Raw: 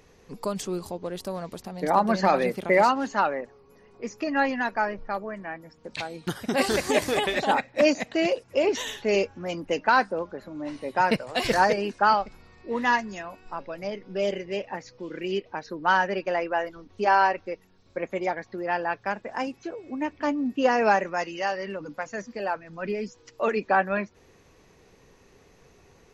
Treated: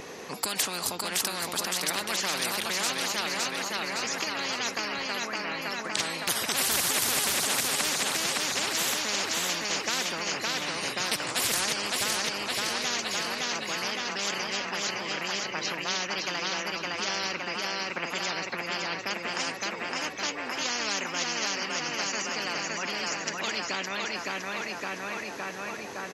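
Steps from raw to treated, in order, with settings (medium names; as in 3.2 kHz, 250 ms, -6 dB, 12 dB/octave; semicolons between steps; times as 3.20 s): high-pass 270 Hz 12 dB/octave; feedback delay 563 ms, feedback 48%, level -6 dB; spectrum-flattening compressor 10:1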